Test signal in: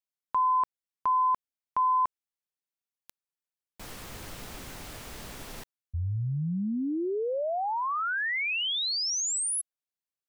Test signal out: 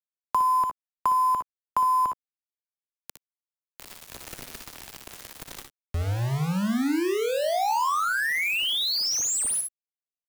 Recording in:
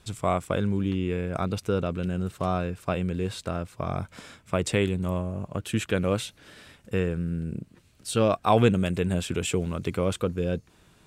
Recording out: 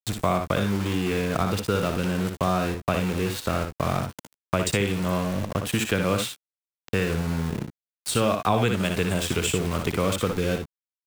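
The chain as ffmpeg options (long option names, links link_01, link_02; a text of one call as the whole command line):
ffmpeg -i in.wav -filter_complex "[0:a]aeval=exprs='val(0)*gte(abs(val(0)),0.0188)':channel_layout=same,acompressor=mode=upward:threshold=-58dB:ratio=1.5:attack=20:release=407:knee=2.83:detection=peak,asplit=2[link_01][link_02];[link_02]aecho=0:1:60|74:0.447|0.2[link_03];[link_01][link_03]amix=inputs=2:normalize=0,acrossover=split=330|710[link_04][link_05][link_06];[link_04]acompressor=threshold=-32dB:ratio=4[link_07];[link_05]acompressor=threshold=-39dB:ratio=4[link_08];[link_06]acompressor=threshold=-31dB:ratio=4[link_09];[link_07][link_08][link_09]amix=inputs=3:normalize=0,volume=7dB" out.wav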